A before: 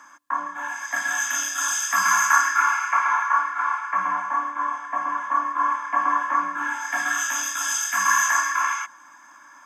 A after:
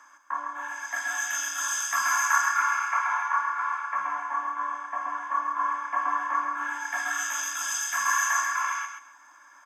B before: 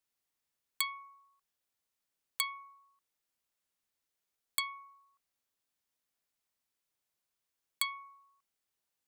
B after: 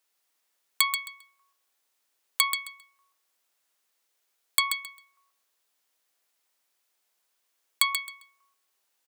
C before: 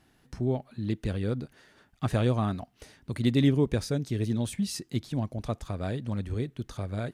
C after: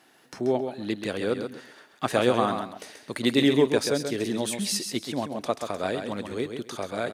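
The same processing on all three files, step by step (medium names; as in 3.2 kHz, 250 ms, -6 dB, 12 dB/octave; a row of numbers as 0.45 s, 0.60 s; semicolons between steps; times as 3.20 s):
high-pass 370 Hz 12 dB/octave; on a send: feedback delay 133 ms, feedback 20%, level -7 dB; on the sum: normalise loudness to -27 LUFS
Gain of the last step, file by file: -5.5 dB, +10.0 dB, +8.5 dB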